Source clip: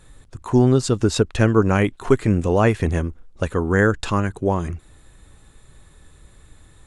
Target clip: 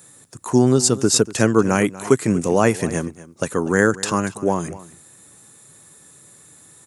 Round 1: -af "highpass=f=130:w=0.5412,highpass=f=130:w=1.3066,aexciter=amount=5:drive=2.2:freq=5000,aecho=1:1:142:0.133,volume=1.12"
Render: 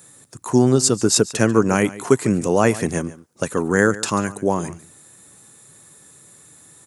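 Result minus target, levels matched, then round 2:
echo 98 ms early
-af "highpass=f=130:w=0.5412,highpass=f=130:w=1.3066,aexciter=amount=5:drive=2.2:freq=5000,aecho=1:1:240:0.133,volume=1.12"

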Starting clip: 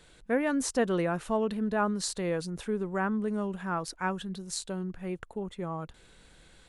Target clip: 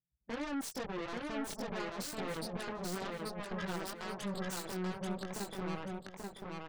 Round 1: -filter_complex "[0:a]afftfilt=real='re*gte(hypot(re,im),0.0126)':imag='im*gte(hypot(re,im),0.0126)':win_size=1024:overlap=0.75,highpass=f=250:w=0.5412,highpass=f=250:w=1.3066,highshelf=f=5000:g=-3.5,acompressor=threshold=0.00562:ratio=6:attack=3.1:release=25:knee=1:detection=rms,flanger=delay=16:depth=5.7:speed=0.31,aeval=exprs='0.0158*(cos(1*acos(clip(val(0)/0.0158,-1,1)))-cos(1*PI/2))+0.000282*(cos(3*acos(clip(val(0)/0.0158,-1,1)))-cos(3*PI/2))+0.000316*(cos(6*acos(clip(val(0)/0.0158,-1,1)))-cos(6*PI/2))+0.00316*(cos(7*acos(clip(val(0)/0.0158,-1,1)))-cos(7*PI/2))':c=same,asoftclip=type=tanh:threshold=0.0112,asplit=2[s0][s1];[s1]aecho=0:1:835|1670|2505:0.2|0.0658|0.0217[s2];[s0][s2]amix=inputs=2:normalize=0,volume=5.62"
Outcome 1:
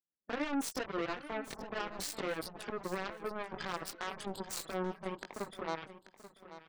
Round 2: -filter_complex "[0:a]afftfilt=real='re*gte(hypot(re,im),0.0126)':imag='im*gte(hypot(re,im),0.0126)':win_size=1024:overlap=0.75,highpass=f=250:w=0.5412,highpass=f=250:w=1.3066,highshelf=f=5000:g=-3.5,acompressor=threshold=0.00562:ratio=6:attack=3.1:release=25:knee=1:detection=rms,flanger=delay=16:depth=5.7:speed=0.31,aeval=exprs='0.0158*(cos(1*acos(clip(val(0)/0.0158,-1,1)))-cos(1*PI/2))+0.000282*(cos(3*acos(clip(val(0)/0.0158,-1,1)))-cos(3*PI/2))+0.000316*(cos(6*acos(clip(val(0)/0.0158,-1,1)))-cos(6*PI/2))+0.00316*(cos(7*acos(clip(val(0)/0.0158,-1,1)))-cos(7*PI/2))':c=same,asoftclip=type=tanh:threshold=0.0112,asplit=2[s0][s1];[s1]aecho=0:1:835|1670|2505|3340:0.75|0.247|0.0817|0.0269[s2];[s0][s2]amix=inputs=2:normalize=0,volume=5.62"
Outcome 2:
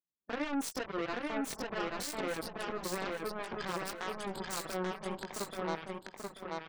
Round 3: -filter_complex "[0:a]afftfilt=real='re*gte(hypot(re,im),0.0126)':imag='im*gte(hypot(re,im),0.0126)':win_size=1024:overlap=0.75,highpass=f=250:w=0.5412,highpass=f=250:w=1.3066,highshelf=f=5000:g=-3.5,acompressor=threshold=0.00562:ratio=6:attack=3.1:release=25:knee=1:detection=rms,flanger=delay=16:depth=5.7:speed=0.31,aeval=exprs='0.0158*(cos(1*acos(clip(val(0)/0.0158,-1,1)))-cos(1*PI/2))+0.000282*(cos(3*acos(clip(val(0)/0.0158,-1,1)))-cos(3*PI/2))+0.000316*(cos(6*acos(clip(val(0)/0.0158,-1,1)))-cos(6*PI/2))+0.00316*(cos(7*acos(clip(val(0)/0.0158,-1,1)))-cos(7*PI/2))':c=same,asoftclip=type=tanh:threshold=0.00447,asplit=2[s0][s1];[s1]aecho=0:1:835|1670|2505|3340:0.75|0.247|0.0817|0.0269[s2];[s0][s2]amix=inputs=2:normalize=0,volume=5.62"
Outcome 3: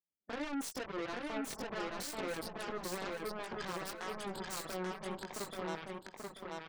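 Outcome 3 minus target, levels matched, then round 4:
125 Hz band -6.0 dB
-filter_complex "[0:a]afftfilt=real='re*gte(hypot(re,im),0.0126)':imag='im*gte(hypot(re,im),0.0126)':win_size=1024:overlap=0.75,highpass=f=100:w=0.5412,highpass=f=100:w=1.3066,highshelf=f=5000:g=-3.5,acompressor=threshold=0.00562:ratio=6:attack=3.1:release=25:knee=1:detection=rms,flanger=delay=16:depth=5.7:speed=0.31,aeval=exprs='0.0158*(cos(1*acos(clip(val(0)/0.0158,-1,1)))-cos(1*PI/2))+0.000282*(cos(3*acos(clip(val(0)/0.0158,-1,1)))-cos(3*PI/2))+0.000316*(cos(6*acos(clip(val(0)/0.0158,-1,1)))-cos(6*PI/2))+0.00316*(cos(7*acos(clip(val(0)/0.0158,-1,1)))-cos(7*PI/2))':c=same,asoftclip=type=tanh:threshold=0.00447,asplit=2[s0][s1];[s1]aecho=0:1:835|1670|2505|3340:0.75|0.247|0.0817|0.0269[s2];[s0][s2]amix=inputs=2:normalize=0,volume=5.62"

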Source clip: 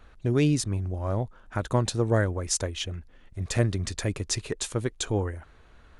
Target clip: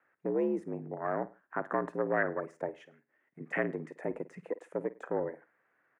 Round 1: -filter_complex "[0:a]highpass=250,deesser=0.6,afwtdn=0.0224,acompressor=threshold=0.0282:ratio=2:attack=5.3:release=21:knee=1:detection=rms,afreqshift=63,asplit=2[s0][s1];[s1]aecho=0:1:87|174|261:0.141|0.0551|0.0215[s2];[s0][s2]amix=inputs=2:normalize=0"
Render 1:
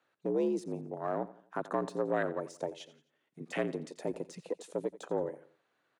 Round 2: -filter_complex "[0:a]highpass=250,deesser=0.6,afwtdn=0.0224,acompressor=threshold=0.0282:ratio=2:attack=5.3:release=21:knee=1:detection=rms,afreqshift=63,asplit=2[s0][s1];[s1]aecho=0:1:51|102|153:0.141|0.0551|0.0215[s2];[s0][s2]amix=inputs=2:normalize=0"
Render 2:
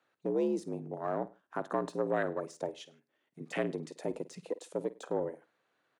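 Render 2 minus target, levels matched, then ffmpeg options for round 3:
4 kHz band +14.0 dB
-filter_complex "[0:a]highpass=250,deesser=0.6,afwtdn=0.0224,acompressor=threshold=0.0282:ratio=2:attack=5.3:release=21:knee=1:detection=rms,highshelf=f=2700:t=q:w=3:g=-13.5,afreqshift=63,asplit=2[s0][s1];[s1]aecho=0:1:51|102|153:0.141|0.0551|0.0215[s2];[s0][s2]amix=inputs=2:normalize=0"

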